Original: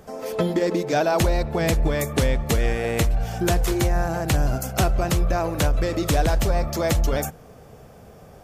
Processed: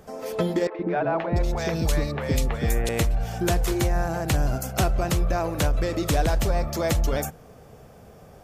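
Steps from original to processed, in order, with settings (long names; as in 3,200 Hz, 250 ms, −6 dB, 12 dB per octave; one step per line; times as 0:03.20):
0:00.67–0:02.89: three-band delay without the direct sound mids, lows, highs 120/690 ms, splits 490/2,400 Hz
level −2 dB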